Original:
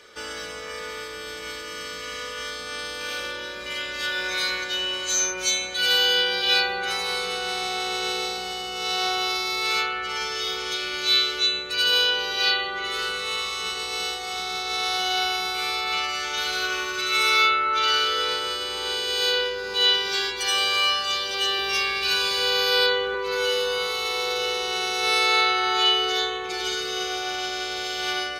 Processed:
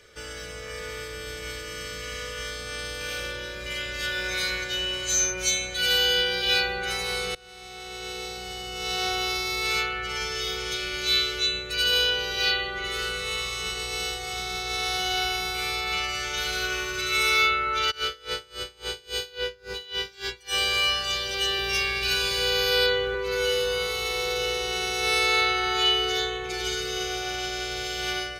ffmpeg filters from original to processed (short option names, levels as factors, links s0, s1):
-filter_complex "[0:a]asplit=3[s0][s1][s2];[s0]afade=t=out:st=17.9:d=0.02[s3];[s1]aeval=exprs='val(0)*pow(10,-26*(0.5-0.5*cos(2*PI*3.6*n/s))/20)':c=same,afade=t=in:st=17.9:d=0.02,afade=t=out:st=20.55:d=0.02[s4];[s2]afade=t=in:st=20.55:d=0.02[s5];[s3][s4][s5]amix=inputs=3:normalize=0,asplit=2[s6][s7];[s6]atrim=end=7.35,asetpts=PTS-STARTPTS,afade=t=out:st=7.346:d=0.004:c=hsin:silence=0.0668344[s8];[s7]atrim=start=7.35,asetpts=PTS-STARTPTS,afade=t=in:d=1.74:silence=0.0668344[s9];[s8][s9]concat=n=2:v=0:a=1,lowshelf=f=120:g=12,dynaudnorm=f=440:g=3:m=1.41,equalizer=f=125:t=o:w=1:g=4,equalizer=f=250:t=o:w=1:g=-7,equalizer=f=1000:t=o:w=1:g=-9,equalizer=f=4000:t=o:w=1:g=-5,volume=0.891"